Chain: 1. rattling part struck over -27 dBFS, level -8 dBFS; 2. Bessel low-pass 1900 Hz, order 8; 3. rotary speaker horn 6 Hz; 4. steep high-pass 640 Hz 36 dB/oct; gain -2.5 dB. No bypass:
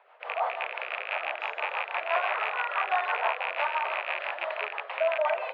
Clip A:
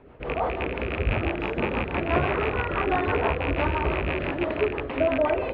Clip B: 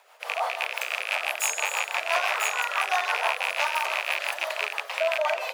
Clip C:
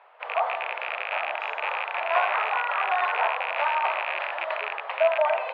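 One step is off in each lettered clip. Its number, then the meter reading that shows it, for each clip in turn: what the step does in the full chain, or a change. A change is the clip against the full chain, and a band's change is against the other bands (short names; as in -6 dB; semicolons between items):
4, 500 Hz band +6.5 dB; 2, crest factor change +2.0 dB; 3, 1 kHz band +1.5 dB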